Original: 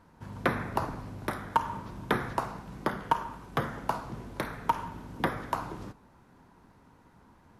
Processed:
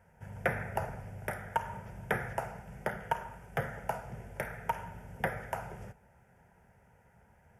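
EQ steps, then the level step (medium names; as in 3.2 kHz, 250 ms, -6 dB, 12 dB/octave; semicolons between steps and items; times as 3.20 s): high-pass 42 Hz; static phaser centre 1.1 kHz, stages 6; 0.0 dB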